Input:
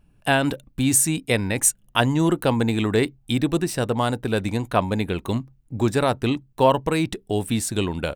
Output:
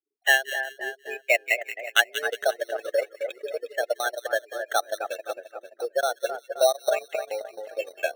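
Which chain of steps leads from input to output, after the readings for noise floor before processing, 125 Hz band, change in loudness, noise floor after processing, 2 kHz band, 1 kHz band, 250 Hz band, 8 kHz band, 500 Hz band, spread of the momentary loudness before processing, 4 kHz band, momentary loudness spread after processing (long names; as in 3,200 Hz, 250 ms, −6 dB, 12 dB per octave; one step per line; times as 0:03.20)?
−59 dBFS, below −40 dB, −4.5 dB, −62 dBFS, +4.0 dB, −5.0 dB, −30.0 dB, −12.0 dB, −2.0 dB, 7 LU, −1.0 dB, 12 LU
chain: noise gate with hold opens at −53 dBFS
gate on every frequency bin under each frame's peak −15 dB strong
single-sideband voice off tune +120 Hz 580–2,600 Hz
in parallel at −9 dB: decimation without filtering 9×
on the sum: Butterworth band-reject 1,000 Hz, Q 0.93
on a send: echo with a time of its own for lows and highs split 1,900 Hz, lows 263 ms, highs 179 ms, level −6 dB
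on the sum: transient designer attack +5 dB, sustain −12 dB
level +4.5 dB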